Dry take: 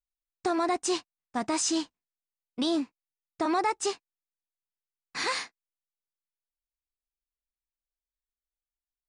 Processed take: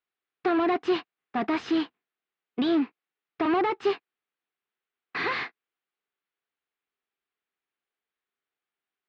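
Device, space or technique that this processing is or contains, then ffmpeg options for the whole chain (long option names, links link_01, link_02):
overdrive pedal into a guitar cabinet: -filter_complex "[0:a]asplit=2[link_01][link_02];[link_02]highpass=frequency=720:poles=1,volume=22dB,asoftclip=type=tanh:threshold=-17dB[link_03];[link_01][link_03]amix=inputs=2:normalize=0,lowpass=frequency=1300:poles=1,volume=-6dB,highpass=110,equalizer=frequency=400:width_type=q:width=4:gain=4,equalizer=frequency=580:width_type=q:width=4:gain=-8,equalizer=frequency=940:width_type=q:width=4:gain=-6,lowpass=frequency=3700:width=0.5412,lowpass=frequency=3700:width=1.3066,volume=1.5dB"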